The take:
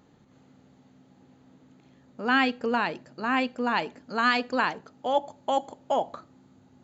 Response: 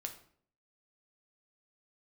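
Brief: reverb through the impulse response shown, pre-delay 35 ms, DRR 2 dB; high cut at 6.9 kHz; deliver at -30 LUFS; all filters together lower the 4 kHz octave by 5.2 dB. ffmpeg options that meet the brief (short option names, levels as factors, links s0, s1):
-filter_complex "[0:a]lowpass=6900,equalizer=f=4000:t=o:g=-7.5,asplit=2[s0][s1];[1:a]atrim=start_sample=2205,adelay=35[s2];[s1][s2]afir=irnorm=-1:irlink=0,volume=1[s3];[s0][s3]amix=inputs=2:normalize=0,volume=0.631"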